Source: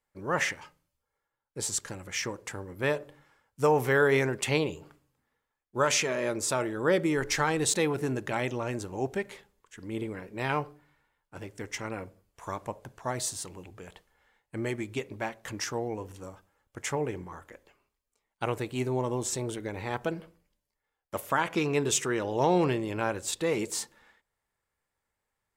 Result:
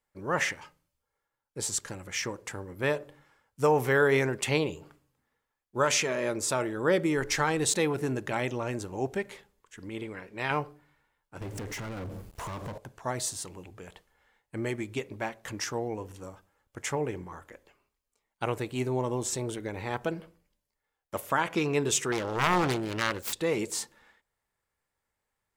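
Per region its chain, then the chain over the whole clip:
9.89–10.51 s: low-pass 3.6 kHz 6 dB/octave + tilt shelf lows -5 dB, about 880 Hz
11.41–12.78 s: bass shelf 370 Hz +8 dB + compression 4:1, threshold -47 dBFS + waveshaping leveller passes 5
22.12–23.33 s: self-modulated delay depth 0.78 ms + tape noise reduction on one side only encoder only
whole clip: none

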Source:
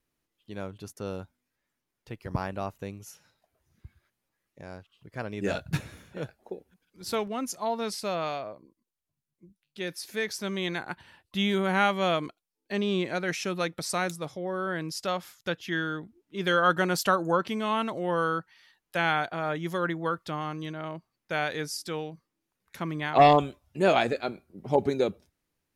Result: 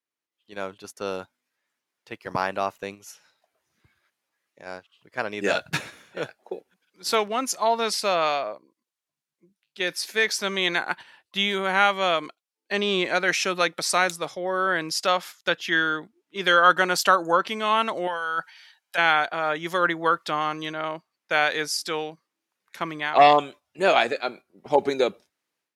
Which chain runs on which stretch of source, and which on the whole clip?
18.07–18.98 s: bass shelf 430 Hz -12 dB + compressor with a negative ratio -36 dBFS + comb 1.3 ms, depth 46%
whole clip: frequency weighting A; gate -46 dBFS, range -6 dB; level rider gain up to 12.5 dB; trim -3 dB

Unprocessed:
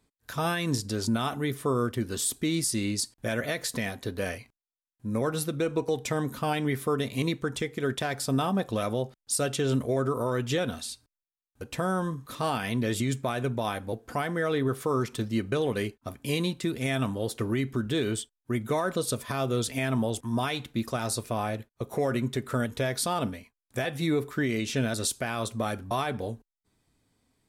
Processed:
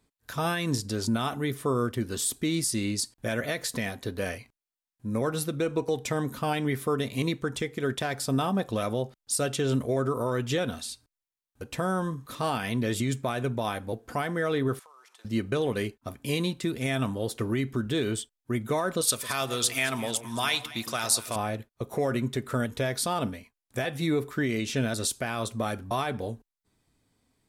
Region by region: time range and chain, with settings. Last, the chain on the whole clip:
14.79–15.25 s: CVSD coder 64 kbps + ladder high-pass 670 Hz, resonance 35% + compression 12:1, threshold -51 dBFS
19.01–21.36 s: tilt shelf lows -8.5 dB, about 840 Hz + echo whose repeats swap between lows and highs 110 ms, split 960 Hz, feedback 51%, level -10.5 dB
whole clip: none

